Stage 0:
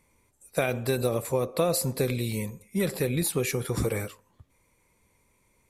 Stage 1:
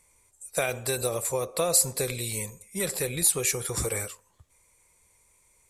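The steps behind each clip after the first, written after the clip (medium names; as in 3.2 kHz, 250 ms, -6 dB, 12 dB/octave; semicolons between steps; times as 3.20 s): graphic EQ 125/250/8000 Hz -4/-10/+12 dB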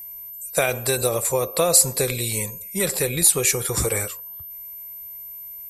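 whistle 13 kHz -41 dBFS; trim +6.5 dB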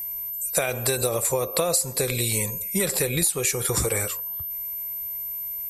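compression 6:1, threshold -26 dBFS, peak gain reduction 15 dB; trim +5.5 dB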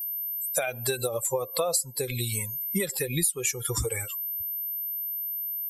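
expander on every frequency bin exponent 2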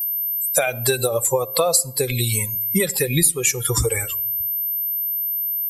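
reverberation RT60 0.85 s, pre-delay 7 ms, DRR 18.5 dB; trim +8.5 dB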